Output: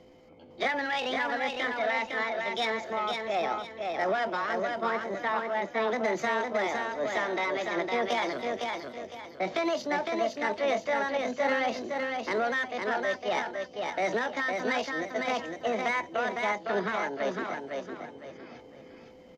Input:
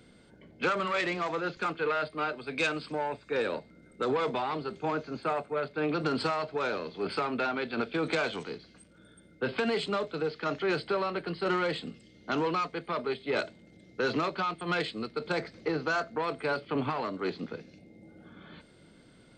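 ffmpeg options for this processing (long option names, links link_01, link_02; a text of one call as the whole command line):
ffmpeg -i in.wav -filter_complex "[0:a]lowpass=frequency=2900:poles=1,aemphasis=mode=reproduction:type=50kf,asetrate=64194,aresample=44100,atempo=0.686977,aeval=exprs='val(0)+0.00126*sin(2*PI*510*n/s)':channel_layout=same,asplit=2[link_01][link_02];[link_02]aecho=0:1:508|1016|1524|2032:0.631|0.202|0.0646|0.0207[link_03];[link_01][link_03]amix=inputs=2:normalize=0,volume=1dB" out.wav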